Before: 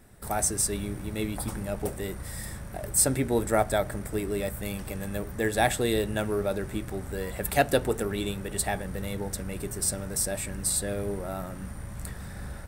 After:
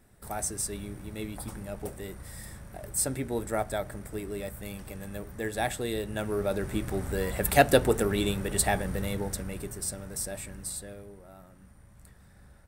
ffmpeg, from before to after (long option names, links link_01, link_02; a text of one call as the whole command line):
ffmpeg -i in.wav -af "volume=3dB,afade=type=in:start_time=6.04:duration=0.94:silence=0.354813,afade=type=out:start_time=8.85:duration=0.99:silence=0.354813,afade=type=out:start_time=10.37:duration=0.73:silence=0.298538" out.wav